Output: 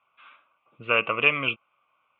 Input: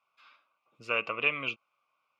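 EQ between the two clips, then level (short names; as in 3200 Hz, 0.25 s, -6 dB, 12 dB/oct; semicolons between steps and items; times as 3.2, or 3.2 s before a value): elliptic low-pass 3300 Hz, stop band 40 dB; low shelf 160 Hz +5.5 dB; +8.0 dB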